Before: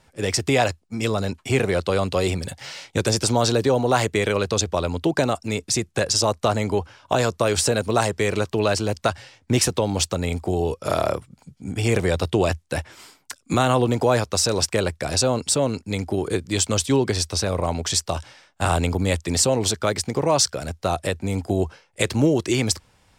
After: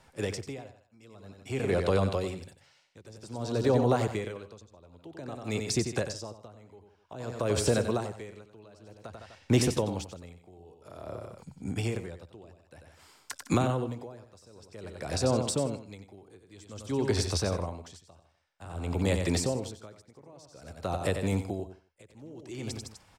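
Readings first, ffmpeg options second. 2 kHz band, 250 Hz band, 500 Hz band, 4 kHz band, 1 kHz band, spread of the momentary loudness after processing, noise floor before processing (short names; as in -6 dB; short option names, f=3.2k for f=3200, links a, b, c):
-13.0 dB, -9.0 dB, -10.0 dB, -14.5 dB, -13.0 dB, 21 LU, -61 dBFS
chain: -filter_complex "[0:a]equalizer=f=960:w=0.78:g=3.5,asplit=2[a][b];[b]aecho=0:1:156:0.15[c];[a][c]amix=inputs=2:normalize=0,acrossover=split=470[d][e];[e]acompressor=threshold=-27dB:ratio=6[f];[d][f]amix=inputs=2:normalize=0,asplit=2[g][h];[h]aecho=0:1:92:0.422[i];[g][i]amix=inputs=2:normalize=0,aeval=exprs='val(0)*pow(10,-28*(0.5-0.5*cos(2*PI*0.52*n/s))/20)':c=same,volume=-3dB"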